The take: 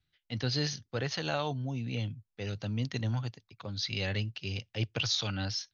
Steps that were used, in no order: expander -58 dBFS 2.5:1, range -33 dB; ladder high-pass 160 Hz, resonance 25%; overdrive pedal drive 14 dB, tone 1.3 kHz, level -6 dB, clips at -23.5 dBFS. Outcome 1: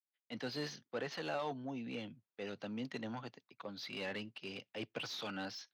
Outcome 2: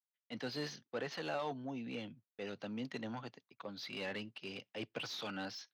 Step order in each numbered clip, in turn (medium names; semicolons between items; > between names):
expander > overdrive pedal > ladder high-pass; overdrive pedal > ladder high-pass > expander